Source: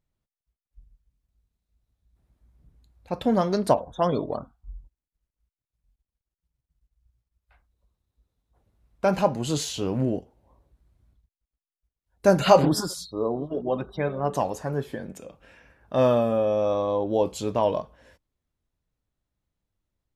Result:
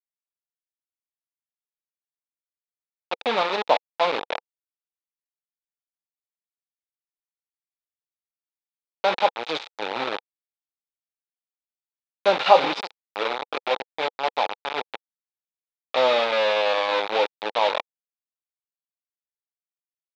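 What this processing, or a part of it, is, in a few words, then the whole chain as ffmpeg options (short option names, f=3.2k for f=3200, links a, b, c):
hand-held game console: -af "acrusher=bits=3:mix=0:aa=0.000001,highpass=440,equalizer=f=490:t=q:w=4:g=5,equalizer=f=850:t=q:w=4:g=9,equalizer=f=1.3k:t=q:w=4:g=4,equalizer=f=2.4k:t=q:w=4:g=7,equalizer=f=3.7k:t=q:w=4:g=9,lowpass=f=4.4k:w=0.5412,lowpass=f=4.4k:w=1.3066,volume=-2.5dB"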